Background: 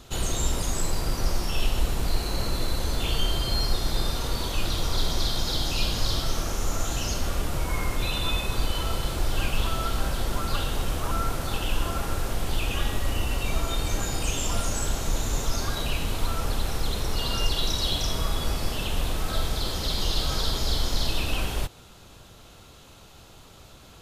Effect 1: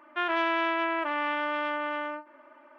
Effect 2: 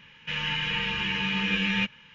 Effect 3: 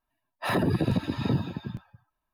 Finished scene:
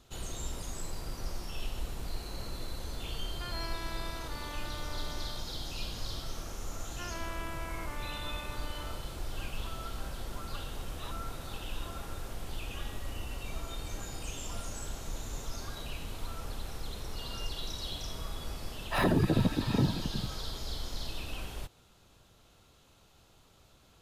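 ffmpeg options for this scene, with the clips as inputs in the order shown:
ffmpeg -i bed.wav -i cue0.wav -i cue1.wav -i cue2.wav -filter_complex "[1:a]asplit=2[link_01][link_02];[3:a]asplit=2[link_03][link_04];[0:a]volume=-12.5dB[link_05];[link_03]bandpass=frequency=3500:width_type=q:width=5.5:csg=0[link_06];[link_01]atrim=end=2.78,asetpts=PTS-STARTPTS,volume=-16dB,afade=type=in:duration=0.004:curve=hsin,afade=type=out:start_time=2.776:duration=0.004:curve=hsin,adelay=3240[link_07];[link_02]atrim=end=2.78,asetpts=PTS-STARTPTS,volume=-15.5dB,afade=type=in:duration=0.004:curve=hsin,afade=type=out:start_time=2.776:duration=0.004:curve=hsin,adelay=300762S[link_08];[link_06]atrim=end=2.33,asetpts=PTS-STARTPTS,volume=-6.5dB,afade=type=in:duration=0.004:curve=hsin,afade=type=out:start_time=2.326:duration=0.004:curve=hsin,adelay=10550[link_09];[link_04]atrim=end=2.33,asetpts=PTS-STARTPTS,volume=-1.5dB,afade=type=in:duration=0.004:curve=hsin,afade=type=out:start_time=2.326:duration=0.004:curve=hsin,adelay=18490[link_10];[link_05][link_07][link_08][link_09][link_10]amix=inputs=5:normalize=0" out.wav

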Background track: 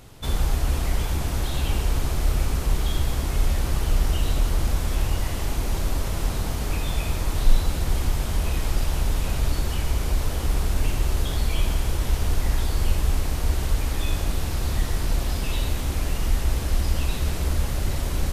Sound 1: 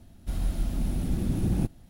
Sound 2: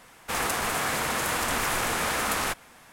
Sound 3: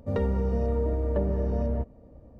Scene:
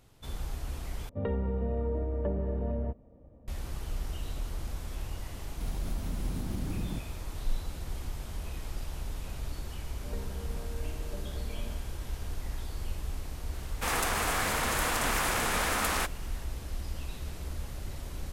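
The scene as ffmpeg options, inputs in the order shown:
ffmpeg -i bed.wav -i cue0.wav -i cue1.wav -i cue2.wav -filter_complex "[3:a]asplit=2[link_01][link_02];[0:a]volume=-14dB[link_03];[link_01]aresample=8000,aresample=44100[link_04];[1:a]acompressor=threshold=-29dB:ratio=6:attack=3.2:release=140:knee=1:detection=peak[link_05];[link_02]aeval=exprs='val(0)+0.00447*sin(2*PI*1600*n/s)':channel_layout=same[link_06];[link_03]asplit=2[link_07][link_08];[link_07]atrim=end=1.094[link_09];[link_04]atrim=end=2.39,asetpts=PTS-STARTPTS,volume=-5dB[link_10];[link_08]atrim=start=3.476[link_11];[link_05]atrim=end=1.89,asetpts=PTS-STARTPTS,volume=-2dB,afade=type=in:duration=0.004:curve=hsin,afade=type=out:start_time=1.886:duration=0.004:curve=hsin,adelay=235053S[link_12];[link_06]atrim=end=2.39,asetpts=PTS-STARTPTS,volume=-17dB,afade=type=in:duration=0.004:curve=hsin,afade=type=out:start_time=2.386:duration=0.004:curve=hsin,adelay=9970[link_13];[2:a]atrim=end=2.92,asetpts=PTS-STARTPTS,volume=-2.5dB,afade=type=in:duration=0.004:curve=hsin,afade=type=out:start_time=2.916:duration=0.004:curve=hsin,adelay=13530[link_14];[link_09][link_10]acrossfade=duration=0.004:curve1=hsin:curve2=hsin[link_15];[link_15][link_11]acrossfade=duration=0.004:curve1=hsin:curve2=hsin[link_16];[link_16][link_12][link_13][link_14]amix=inputs=4:normalize=0" out.wav

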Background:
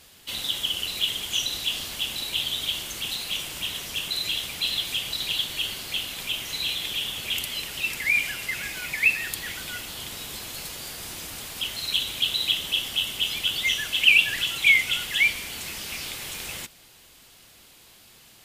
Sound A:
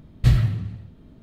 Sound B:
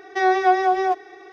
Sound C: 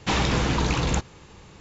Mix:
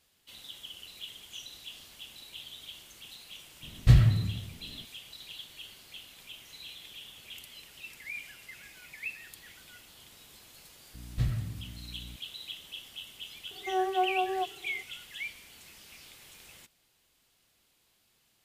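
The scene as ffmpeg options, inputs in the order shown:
ffmpeg -i bed.wav -i cue0.wav -i cue1.wav -filter_complex "[1:a]asplit=2[link_01][link_02];[0:a]volume=-18dB[link_03];[link_02]aeval=exprs='val(0)+0.0282*(sin(2*PI*60*n/s)+sin(2*PI*2*60*n/s)/2+sin(2*PI*3*60*n/s)/3+sin(2*PI*4*60*n/s)/4+sin(2*PI*5*60*n/s)/5)':channel_layout=same[link_04];[2:a]lowpass=1000[link_05];[link_01]atrim=end=1.22,asetpts=PTS-STARTPTS,volume=-2dB,afade=type=in:duration=0.004:curve=hsin,afade=type=out:start_time=1.216:duration=0.004:curve=hsin,adelay=3630[link_06];[link_04]atrim=end=1.22,asetpts=PTS-STARTPTS,volume=-13dB,afade=type=in:duration=0.004:curve=hsin,afade=type=out:start_time=1.216:duration=0.004:curve=hsin,adelay=10940[link_07];[link_05]atrim=end=1.32,asetpts=PTS-STARTPTS,volume=-10dB,afade=type=in:duration=0.004:curve=hsin,afade=type=out:start_time=1.316:duration=0.004:curve=hsin,adelay=13510[link_08];[link_03][link_06][link_07][link_08]amix=inputs=4:normalize=0" out.wav

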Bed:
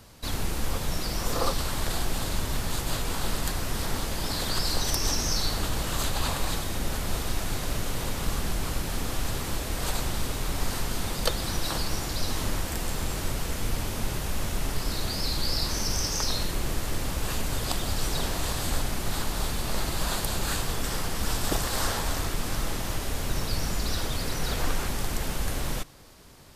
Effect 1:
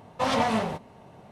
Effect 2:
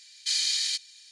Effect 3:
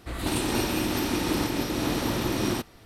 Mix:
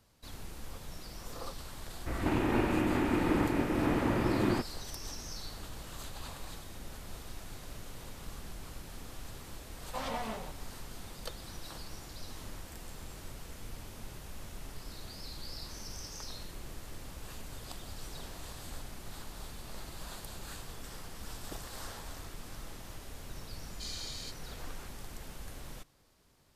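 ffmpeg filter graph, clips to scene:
ffmpeg -i bed.wav -i cue0.wav -i cue1.wav -i cue2.wav -filter_complex "[0:a]volume=-16dB[link_01];[3:a]lowpass=frequency=2400:width=0.5412,lowpass=frequency=2400:width=1.3066[link_02];[1:a]equalizer=frequency=88:width=0.54:gain=-8[link_03];[link_02]atrim=end=2.85,asetpts=PTS-STARTPTS,volume=-2dB,afade=type=in:duration=0.004:curve=hsin,afade=type=out:start_time=2.846:duration=0.004:curve=hsin,adelay=2000[link_04];[link_03]atrim=end=1.31,asetpts=PTS-STARTPTS,volume=-12.5dB,afade=type=in:duration=0.004:curve=hsin,afade=type=out:start_time=1.306:duration=0.004:curve=hsin,adelay=9740[link_05];[2:a]atrim=end=1.11,asetpts=PTS-STARTPTS,volume=-16.5dB,afade=type=in:duration=0.004:curve=hsin,afade=type=out:start_time=1.106:duration=0.004:curve=hsin,adelay=23540[link_06];[link_01][link_04][link_05][link_06]amix=inputs=4:normalize=0" out.wav

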